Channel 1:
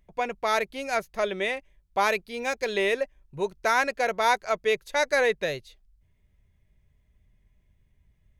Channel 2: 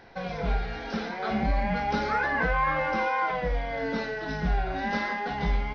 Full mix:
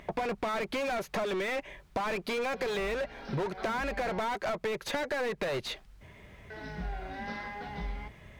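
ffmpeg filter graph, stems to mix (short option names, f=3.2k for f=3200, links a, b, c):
-filter_complex "[0:a]acompressor=threshold=-27dB:ratio=6,asplit=2[a][b];[b]highpass=f=720:p=1,volume=34dB,asoftclip=type=tanh:threshold=-20.5dB[c];[a][c]amix=inputs=2:normalize=0,lowpass=f=1.4k:p=1,volume=-6dB,volume=3dB[d];[1:a]adelay=2350,volume=-10dB,asplit=3[e][f][g];[e]atrim=end=4.19,asetpts=PTS-STARTPTS,afade=t=out:st=4.186:d=0.004:c=hsin[h];[f]atrim=start=4.19:end=6.5,asetpts=PTS-STARTPTS,volume=0[i];[g]atrim=start=6.5,asetpts=PTS-STARTPTS,afade=t=in:d=0.004:c=hsin[j];[h][i][j]concat=n=3:v=0:a=1[k];[d][k]amix=inputs=2:normalize=0,acompressor=threshold=-30dB:ratio=6"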